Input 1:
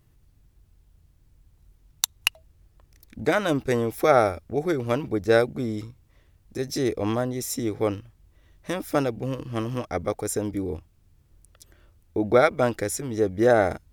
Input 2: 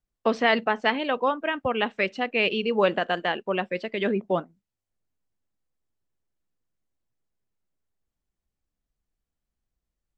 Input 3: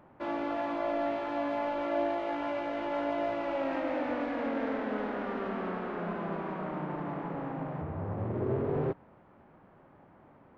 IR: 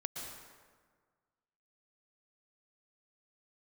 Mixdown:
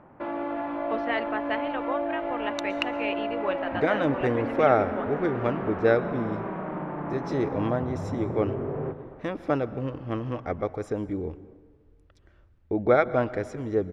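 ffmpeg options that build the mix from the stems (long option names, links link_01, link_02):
-filter_complex "[0:a]adelay=550,volume=-3.5dB,asplit=2[link_01][link_02];[link_02]volume=-12dB[link_03];[1:a]lowshelf=frequency=350:gain=-12,adelay=650,volume=-5.5dB[link_04];[2:a]acompressor=threshold=-36dB:ratio=2.5,volume=2dB,asplit=2[link_05][link_06];[link_06]volume=-4dB[link_07];[3:a]atrim=start_sample=2205[link_08];[link_03][link_07]amix=inputs=2:normalize=0[link_09];[link_09][link_08]afir=irnorm=-1:irlink=0[link_10];[link_01][link_04][link_05][link_10]amix=inputs=4:normalize=0,lowpass=2400"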